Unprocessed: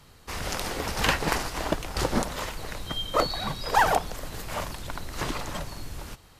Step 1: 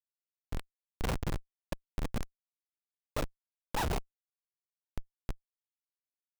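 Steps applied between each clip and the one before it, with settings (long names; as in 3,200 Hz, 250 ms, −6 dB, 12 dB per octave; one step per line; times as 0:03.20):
comparator with hysteresis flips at −18.5 dBFS
level −1.5 dB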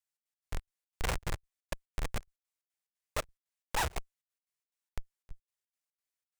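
octave-band graphic EQ 125/250/2,000/8,000 Hz −3/−10/+4/+5 dB
gate pattern "xx.x.xx.xx.x" 178 BPM −24 dB
level +1 dB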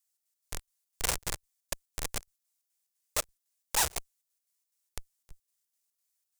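bass and treble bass −5 dB, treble +13 dB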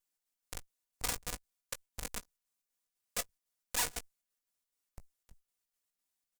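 lower of the sound and its delayed copy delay 4.1 ms
double-tracking delay 19 ms −12 dB
level −5 dB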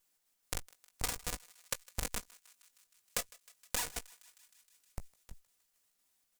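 downward compressor 6 to 1, threshold −41 dBFS, peak gain reduction 14.5 dB
feedback echo with a high-pass in the loop 156 ms, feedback 76%, high-pass 920 Hz, level −21.5 dB
level +9.5 dB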